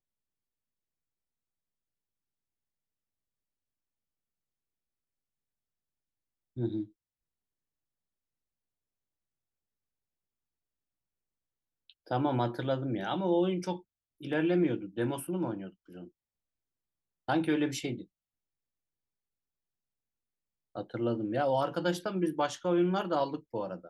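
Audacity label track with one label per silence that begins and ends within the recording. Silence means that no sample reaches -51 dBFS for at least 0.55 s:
6.880000	11.900000	silence
16.080000	17.280000	silence
18.040000	20.750000	silence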